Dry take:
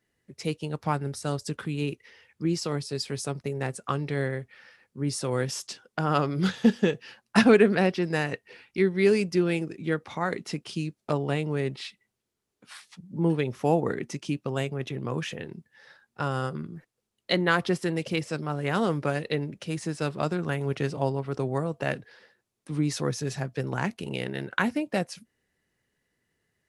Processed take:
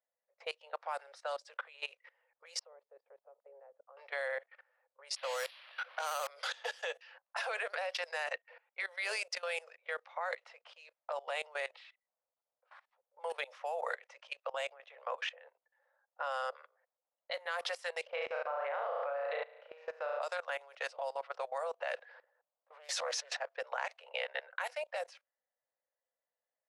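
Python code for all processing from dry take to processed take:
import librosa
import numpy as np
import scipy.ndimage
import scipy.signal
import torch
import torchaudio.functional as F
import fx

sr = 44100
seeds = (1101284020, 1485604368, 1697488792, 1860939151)

y = fx.chain(x, sr, fx.bandpass_q(hz=340.0, q=2.2),
    fx.air_absorb(metres=190.0), at=(2.59, 3.97))
y = fx.chain(y, sr, fx.crossing_spikes(level_db=-18.0),
    fx.high_shelf(hz=3600.0, db=9.5),
    fx.resample_bad(factor=6, down='filtered', up='hold'), at=(5.16, 6.27))
y = fx.chain(y, sr, fx.bandpass_edges(low_hz=260.0, high_hz=2300.0),
    fx.tilt_eq(slope=-3.5),
    fx.room_flutter(wall_m=6.1, rt60_s=0.73), at=(18.07, 20.22))
y = fx.chain(y, sr, fx.peak_eq(hz=65.0, db=-13.5, octaves=0.21),
    fx.transient(attack_db=-4, sustain_db=7),
    fx.doppler_dist(depth_ms=0.3), at=(21.94, 23.41))
y = fx.env_lowpass(y, sr, base_hz=690.0, full_db=-21.0)
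y = scipy.signal.sosfilt(scipy.signal.butter(16, 510.0, 'highpass', fs=sr, output='sos'), y)
y = fx.level_steps(y, sr, step_db=20)
y = F.gain(torch.from_numpy(y), 3.5).numpy()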